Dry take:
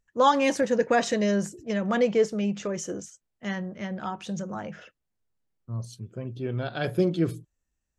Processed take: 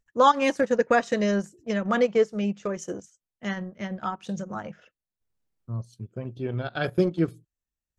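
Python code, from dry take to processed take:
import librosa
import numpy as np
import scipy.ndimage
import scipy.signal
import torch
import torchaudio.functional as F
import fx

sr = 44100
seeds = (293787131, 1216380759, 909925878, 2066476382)

y = fx.transient(x, sr, attack_db=2, sustain_db=-11)
y = fx.dynamic_eq(y, sr, hz=1300.0, q=2.8, threshold_db=-44.0, ratio=4.0, max_db=5)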